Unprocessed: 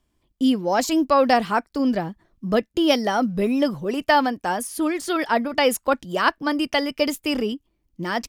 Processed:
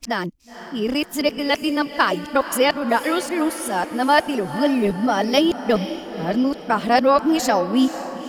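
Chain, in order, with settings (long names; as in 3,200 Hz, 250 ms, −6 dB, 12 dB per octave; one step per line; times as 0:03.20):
played backwards from end to start
feedback delay with all-pass diffusion 497 ms, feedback 50%, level −12 dB
level +1.5 dB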